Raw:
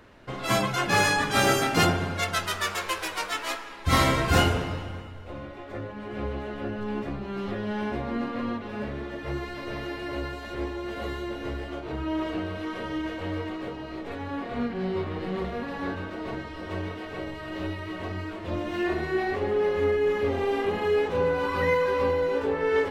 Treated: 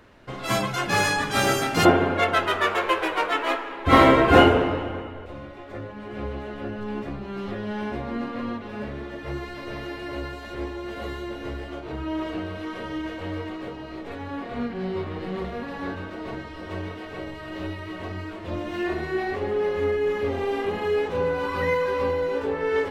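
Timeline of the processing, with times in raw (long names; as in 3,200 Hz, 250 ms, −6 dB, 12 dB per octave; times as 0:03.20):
0:01.85–0:05.26: drawn EQ curve 180 Hz 0 dB, 270 Hz +10 dB, 390 Hz +12 dB, 3,100 Hz +3 dB, 5,200 Hz −9 dB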